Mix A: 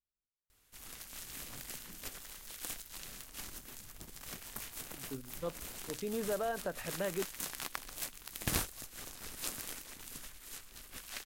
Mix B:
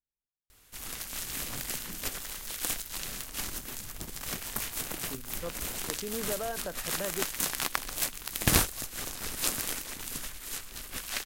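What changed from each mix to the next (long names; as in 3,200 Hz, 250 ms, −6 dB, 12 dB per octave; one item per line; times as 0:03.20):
background +10.0 dB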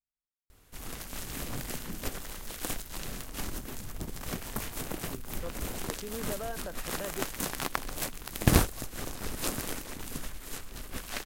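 speech −3.0 dB
background: add tilt shelving filter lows +5.5 dB, about 1,200 Hz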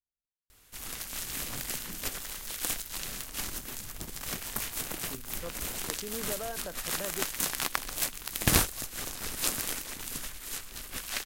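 background: add tilt shelving filter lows −5.5 dB, about 1,200 Hz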